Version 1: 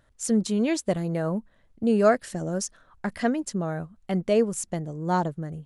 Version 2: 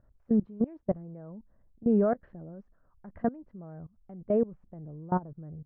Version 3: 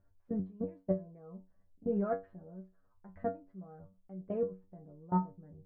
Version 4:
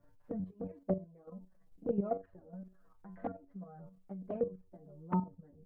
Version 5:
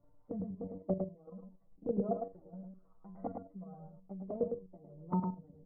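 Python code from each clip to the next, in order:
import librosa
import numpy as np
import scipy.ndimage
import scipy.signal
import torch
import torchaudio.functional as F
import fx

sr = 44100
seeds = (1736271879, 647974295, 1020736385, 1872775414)

y1 = fx.level_steps(x, sr, step_db=22)
y1 = scipy.signal.sosfilt(scipy.signal.bessel(4, 910.0, 'lowpass', norm='mag', fs=sr, output='sos'), y1)
y1 = fx.low_shelf(y1, sr, hz=140.0, db=8.0)
y1 = y1 * librosa.db_to_amplitude(-1.5)
y2 = fx.stiff_resonator(y1, sr, f0_hz=93.0, decay_s=0.27, stiffness=0.002)
y2 = y2 * librosa.db_to_amplitude(3.5)
y3 = fx.level_steps(y2, sr, step_db=10)
y3 = fx.env_flanger(y3, sr, rest_ms=7.0, full_db=-32.5)
y3 = fx.band_squash(y3, sr, depth_pct=40)
y3 = y3 * librosa.db_to_amplitude(5.0)
y4 = scipy.signal.savgol_filter(y3, 65, 4, mode='constant')
y4 = y4 + 10.0 ** (-4.5 / 20.0) * np.pad(y4, (int(106 * sr / 1000.0), 0))[:len(y4)]
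y4 = y4 * librosa.db_to_amplitude(-1.0)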